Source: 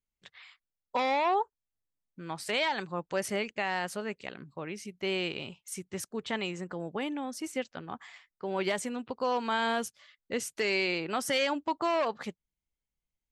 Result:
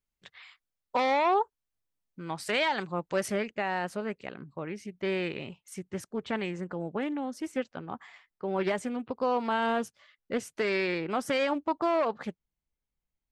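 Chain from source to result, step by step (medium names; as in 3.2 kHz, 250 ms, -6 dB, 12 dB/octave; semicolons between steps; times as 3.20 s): treble shelf 2.7 kHz -2.5 dB, from 3.32 s -10.5 dB; loudspeaker Doppler distortion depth 0.18 ms; trim +2.5 dB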